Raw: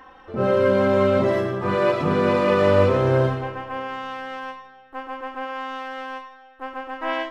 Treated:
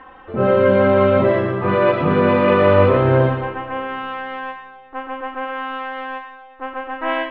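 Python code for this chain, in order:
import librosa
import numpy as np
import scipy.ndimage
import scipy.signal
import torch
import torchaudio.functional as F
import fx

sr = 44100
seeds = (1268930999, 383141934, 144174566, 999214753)

y = scipy.signal.sosfilt(scipy.signal.butter(4, 3200.0, 'lowpass', fs=sr, output='sos'), x)
y = fx.echo_feedback(y, sr, ms=121, feedback_pct=48, wet_db=-13.5)
y = y * 10.0 ** (4.5 / 20.0)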